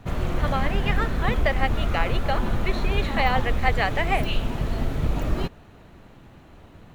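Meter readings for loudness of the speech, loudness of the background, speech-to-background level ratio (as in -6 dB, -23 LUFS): -27.5 LUFS, -27.5 LUFS, 0.0 dB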